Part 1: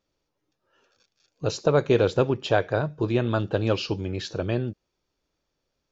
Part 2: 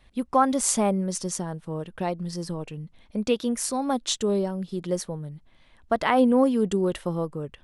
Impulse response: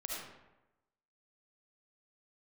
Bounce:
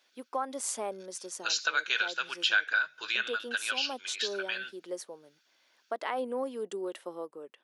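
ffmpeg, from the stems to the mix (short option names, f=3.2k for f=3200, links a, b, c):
-filter_complex "[0:a]highpass=f=1.5k:t=q:w=14,highshelf=f=2.1k:t=q:w=1.5:g=11,volume=-1.5dB[a];[1:a]highpass=f=330:w=0.5412,highpass=f=330:w=1.3066,volume=-9dB,asplit=2[b][c];[c]apad=whole_len=260714[d];[a][d]sidechaincompress=threshold=-41dB:ratio=8:attack=41:release=468[e];[e][b]amix=inputs=2:normalize=0,acompressor=threshold=-30dB:ratio=2"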